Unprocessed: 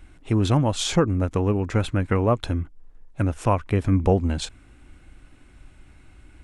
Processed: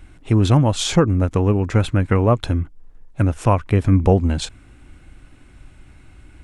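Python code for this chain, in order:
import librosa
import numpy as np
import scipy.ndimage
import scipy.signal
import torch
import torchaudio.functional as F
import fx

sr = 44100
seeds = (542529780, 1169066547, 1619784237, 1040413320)

y = fx.peak_eq(x, sr, hz=120.0, db=3.0, octaves=1.2)
y = y * librosa.db_to_amplitude(3.5)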